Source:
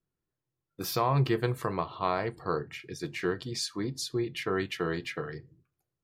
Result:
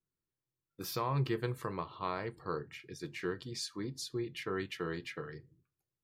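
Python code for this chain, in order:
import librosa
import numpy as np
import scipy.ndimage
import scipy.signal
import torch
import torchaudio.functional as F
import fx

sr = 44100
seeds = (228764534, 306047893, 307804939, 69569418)

y = fx.peak_eq(x, sr, hz=700.0, db=-8.5, octaves=0.24)
y = y * 10.0 ** (-6.5 / 20.0)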